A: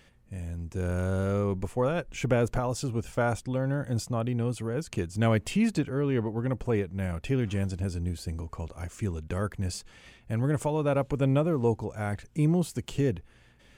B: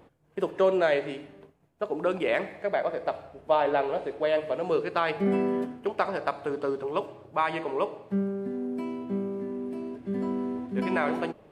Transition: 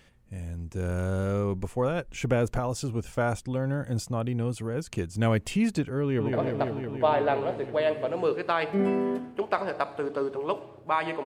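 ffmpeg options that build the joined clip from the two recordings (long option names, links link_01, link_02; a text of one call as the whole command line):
ffmpeg -i cue0.wav -i cue1.wav -filter_complex "[0:a]apad=whole_dur=11.25,atrim=end=11.25,atrim=end=6.332[link_01];[1:a]atrim=start=2.798:end=7.72[link_02];[link_01][link_02]acrossfade=duration=0.004:curve1=hsin:curve2=hsin,asplit=2[link_03][link_04];[link_04]afade=type=in:start_time=6.02:duration=0.01,afade=type=out:start_time=6.33:duration=0.01,aecho=0:1:170|340|510|680|850|1020|1190|1360|1530|1700|1870|2040:0.630957|0.536314|0.455867|0.387487|0.329364|0.279959|0.237965|0.20227|0.17193|0.14614|0.124219|0.105586[link_05];[link_03][link_05]amix=inputs=2:normalize=0" out.wav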